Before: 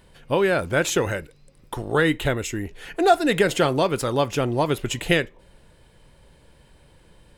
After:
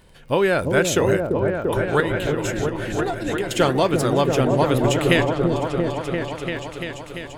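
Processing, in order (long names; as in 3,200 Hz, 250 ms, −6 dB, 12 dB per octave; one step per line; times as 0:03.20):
0:02.00–0:03.51: downward compressor 10 to 1, threshold −26 dBFS, peak gain reduction 15.5 dB
surface crackle 31 per second −40 dBFS
on a send: echo whose low-pass opens from repeat to repeat 342 ms, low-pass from 400 Hz, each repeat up 1 octave, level 0 dB
on the sum: level +1.5 dB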